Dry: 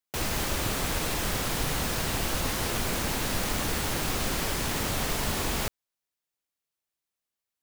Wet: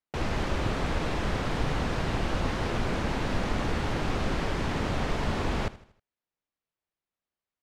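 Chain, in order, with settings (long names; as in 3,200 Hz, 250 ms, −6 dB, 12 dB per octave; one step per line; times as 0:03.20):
head-to-tape spacing loss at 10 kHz 25 dB
on a send: repeating echo 79 ms, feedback 44%, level −18 dB
on the sum: level +3 dB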